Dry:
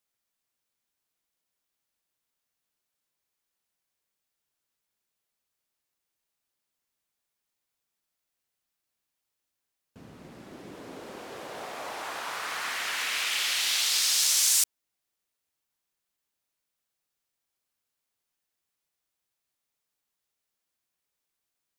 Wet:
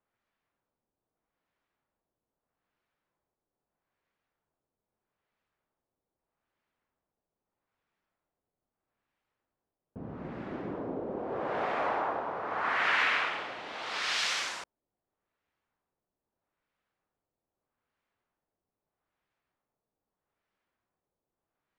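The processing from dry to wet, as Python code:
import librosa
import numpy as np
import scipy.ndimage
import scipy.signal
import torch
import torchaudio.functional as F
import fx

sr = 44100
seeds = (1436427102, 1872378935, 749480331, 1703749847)

y = fx.filter_lfo_lowpass(x, sr, shape='sine', hz=0.79, low_hz=630.0, high_hz=2000.0, q=0.87)
y = F.gain(torch.from_numpy(y), 7.5).numpy()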